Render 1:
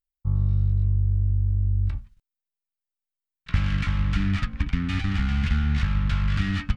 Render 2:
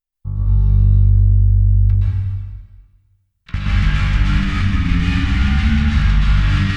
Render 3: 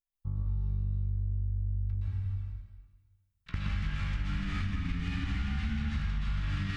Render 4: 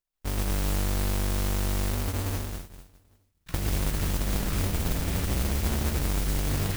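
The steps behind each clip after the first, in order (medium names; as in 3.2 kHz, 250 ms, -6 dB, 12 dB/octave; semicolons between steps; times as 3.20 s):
plate-style reverb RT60 1.5 s, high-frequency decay 1×, pre-delay 110 ms, DRR -8.5 dB
compression 6:1, threshold -20 dBFS, peak gain reduction 12 dB; trim -9 dB
square wave that keeps the level; modulation noise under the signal 11 dB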